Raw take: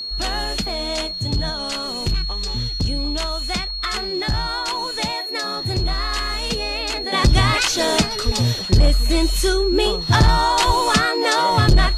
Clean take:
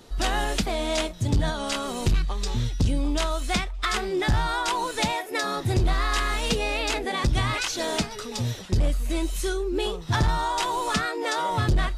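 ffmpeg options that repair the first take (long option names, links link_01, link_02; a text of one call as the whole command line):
ffmpeg -i in.wav -filter_complex "[0:a]bandreject=frequency=4300:width=30,asplit=3[link_01][link_02][link_03];[link_01]afade=type=out:start_time=8.25:duration=0.02[link_04];[link_02]highpass=frequency=140:width=0.5412,highpass=frequency=140:width=1.3066,afade=type=in:start_time=8.25:duration=0.02,afade=type=out:start_time=8.37:duration=0.02[link_05];[link_03]afade=type=in:start_time=8.37:duration=0.02[link_06];[link_04][link_05][link_06]amix=inputs=3:normalize=0,asplit=3[link_07][link_08][link_09];[link_07]afade=type=out:start_time=10.66:duration=0.02[link_10];[link_08]highpass=frequency=140:width=0.5412,highpass=frequency=140:width=1.3066,afade=type=in:start_time=10.66:duration=0.02,afade=type=out:start_time=10.78:duration=0.02[link_11];[link_09]afade=type=in:start_time=10.78:duration=0.02[link_12];[link_10][link_11][link_12]amix=inputs=3:normalize=0,asplit=3[link_13][link_14][link_15];[link_13]afade=type=out:start_time=11.66:duration=0.02[link_16];[link_14]highpass=frequency=140:width=0.5412,highpass=frequency=140:width=1.3066,afade=type=in:start_time=11.66:duration=0.02,afade=type=out:start_time=11.78:duration=0.02[link_17];[link_15]afade=type=in:start_time=11.78:duration=0.02[link_18];[link_16][link_17][link_18]amix=inputs=3:normalize=0,asetnsamples=nb_out_samples=441:pad=0,asendcmd='7.12 volume volume -8.5dB',volume=0dB" out.wav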